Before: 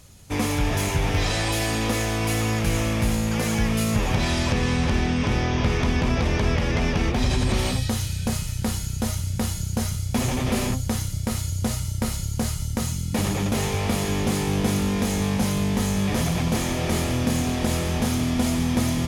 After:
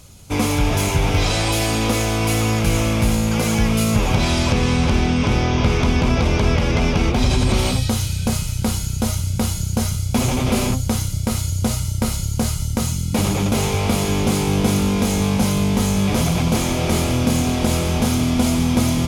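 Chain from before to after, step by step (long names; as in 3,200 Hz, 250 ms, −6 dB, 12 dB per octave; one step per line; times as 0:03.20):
notch filter 1,800 Hz, Q 6.5
level +5 dB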